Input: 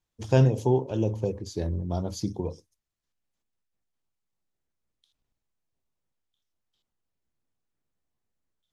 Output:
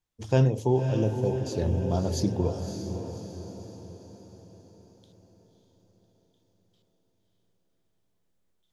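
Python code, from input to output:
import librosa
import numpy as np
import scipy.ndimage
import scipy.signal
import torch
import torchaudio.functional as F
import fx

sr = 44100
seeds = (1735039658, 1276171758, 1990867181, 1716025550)

y = fx.echo_diffused(x, sr, ms=577, feedback_pct=49, wet_db=-8)
y = fx.rider(y, sr, range_db=4, speed_s=2.0)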